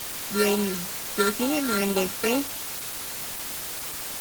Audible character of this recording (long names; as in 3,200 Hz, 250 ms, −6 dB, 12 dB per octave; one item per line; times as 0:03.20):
a buzz of ramps at a fixed pitch in blocks of 32 samples
phaser sweep stages 8, 2.2 Hz, lowest notch 780–1,800 Hz
a quantiser's noise floor 6 bits, dither triangular
Opus